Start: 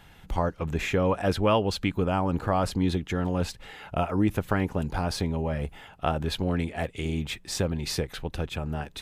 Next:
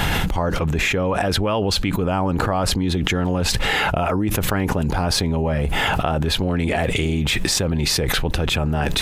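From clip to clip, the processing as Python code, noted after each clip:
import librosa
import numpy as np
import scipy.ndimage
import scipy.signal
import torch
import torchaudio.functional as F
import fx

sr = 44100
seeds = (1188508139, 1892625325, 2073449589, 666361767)

y = fx.env_flatten(x, sr, amount_pct=100)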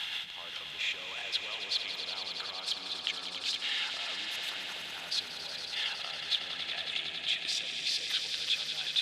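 y = fx.bandpass_q(x, sr, hz=3500.0, q=2.8)
y = fx.echo_swell(y, sr, ms=92, loudest=5, wet_db=-9.5)
y = y * librosa.db_to_amplitude(-6.0)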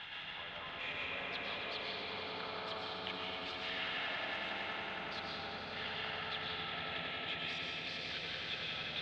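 y = scipy.signal.sosfilt(scipy.signal.butter(2, 1900.0, 'lowpass', fs=sr, output='sos'), x)
y = fx.low_shelf(y, sr, hz=140.0, db=6.5)
y = fx.rev_freeverb(y, sr, rt60_s=4.5, hf_ratio=0.4, predelay_ms=80, drr_db=-5.5)
y = y * librosa.db_to_amplitude(-3.0)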